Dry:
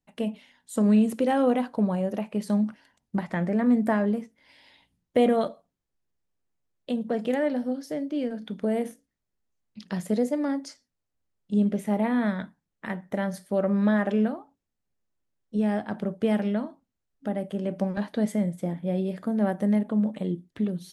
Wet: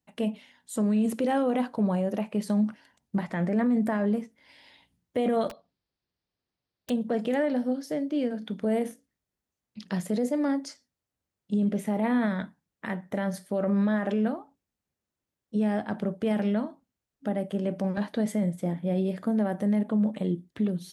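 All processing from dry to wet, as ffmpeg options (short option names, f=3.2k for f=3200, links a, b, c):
-filter_complex "[0:a]asettb=1/sr,asplit=3[a][b][c];[a]atrim=end=5.494[d];[b]atrim=start=5.49:end=6.9,asetpts=PTS-STARTPTS,afade=t=in:d=0.004:c=qsin,afade=t=out:st=1.406:d=0.004:c=qsin,highshelf=f=6.1k:t=q:w=3:g=-10,aeval=exprs='(mod(47.3*val(0)+1,2)-1)/47.3':c=same[e];[c]atrim=start=6.896[f];[d][e]acrossfade=d=0.004:c1=hsin:c2=qsin[g];[g][f]acrossfade=d=0.004:c1=qsin:c2=hsin,alimiter=limit=-19.5dB:level=0:latency=1:release=11,highpass=49,volume=1dB"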